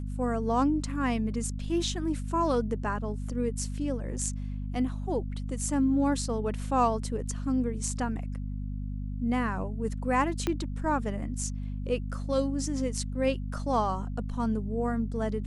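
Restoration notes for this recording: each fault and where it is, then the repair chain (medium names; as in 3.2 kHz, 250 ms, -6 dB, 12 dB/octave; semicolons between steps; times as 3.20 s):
hum 50 Hz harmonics 5 -34 dBFS
10.47 s: pop -14 dBFS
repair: de-click; de-hum 50 Hz, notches 5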